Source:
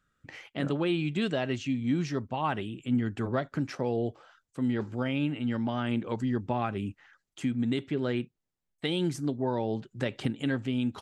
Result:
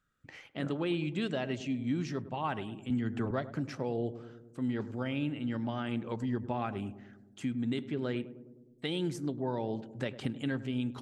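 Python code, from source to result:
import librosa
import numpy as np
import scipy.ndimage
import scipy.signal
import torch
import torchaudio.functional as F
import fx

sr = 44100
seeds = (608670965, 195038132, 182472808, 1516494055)

y = fx.echo_filtered(x, sr, ms=103, feedback_pct=70, hz=830.0, wet_db=-13.0)
y = fx.band_squash(y, sr, depth_pct=100, at=(2.9, 3.31))
y = F.gain(torch.from_numpy(y), -4.5).numpy()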